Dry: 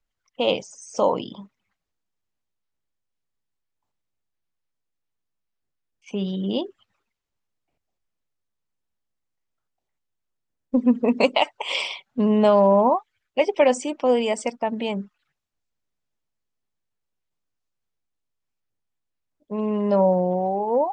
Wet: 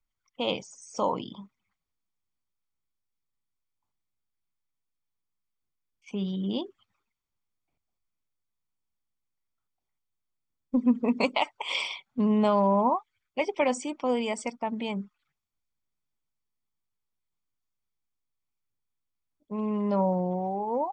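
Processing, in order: comb 0.9 ms, depth 37%; trim -5.5 dB

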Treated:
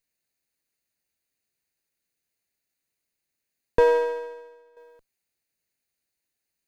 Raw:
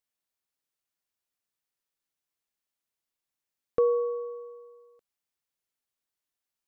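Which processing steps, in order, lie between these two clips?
comb filter that takes the minimum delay 0.46 ms; 3.93–4.77 s: upward expansion 1.5:1, over -50 dBFS; trim +7 dB

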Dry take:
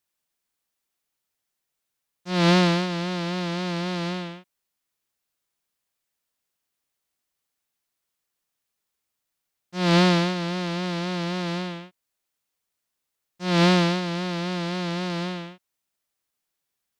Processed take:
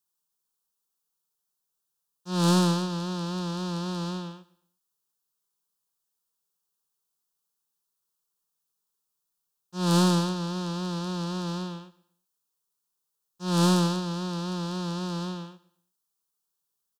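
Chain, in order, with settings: tracing distortion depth 0.051 ms; treble shelf 6 kHz +4 dB; static phaser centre 420 Hz, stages 8; on a send: feedback delay 118 ms, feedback 34%, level -20 dB; on the sum: trim -2 dB

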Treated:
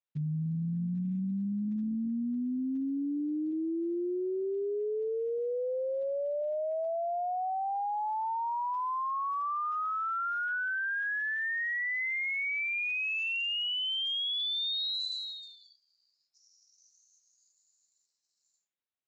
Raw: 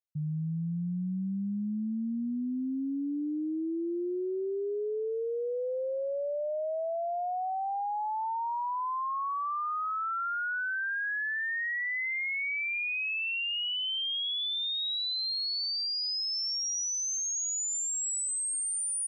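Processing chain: Speex 17 kbps 16 kHz

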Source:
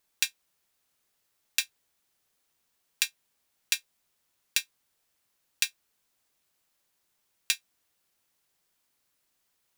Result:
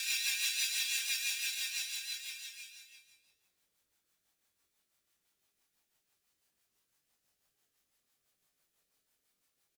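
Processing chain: Paulstretch 11×, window 0.50 s, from 1.54 s; doubling 22 ms -5 dB; rotary cabinet horn 6 Hz; trim -1.5 dB

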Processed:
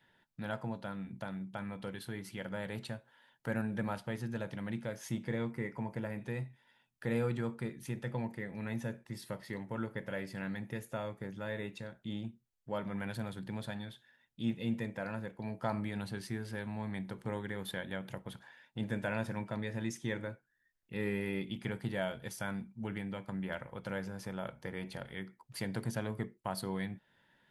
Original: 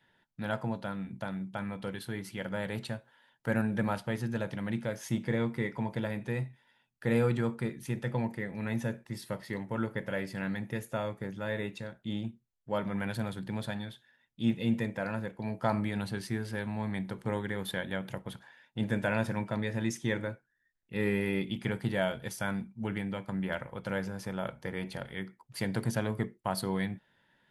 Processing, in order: in parallel at +1 dB: compression, threshold -44 dBFS, peak gain reduction 20 dB; 5.51–6.18 s: on the sum: peaking EQ 3.6 kHz -12 dB 0.4 oct; trim -7 dB

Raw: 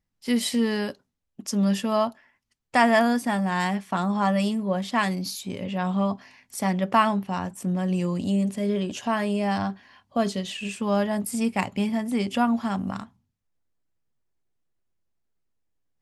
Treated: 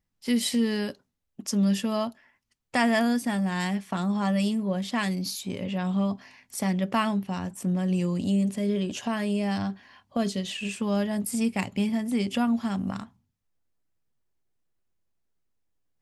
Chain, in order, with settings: dynamic bell 950 Hz, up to -8 dB, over -36 dBFS, Q 0.72

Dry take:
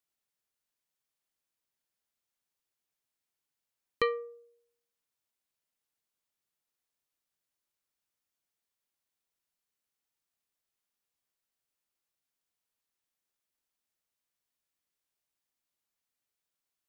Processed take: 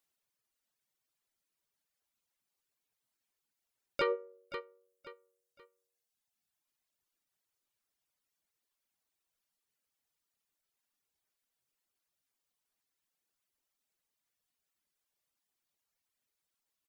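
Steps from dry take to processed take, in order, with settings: harmony voices -4 st -7 dB, +3 st -6 dB; feedback delay 527 ms, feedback 31%, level -16 dB; peak limiter -23 dBFS, peak gain reduction 9.5 dB; reverb removal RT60 1.5 s; trim +2.5 dB

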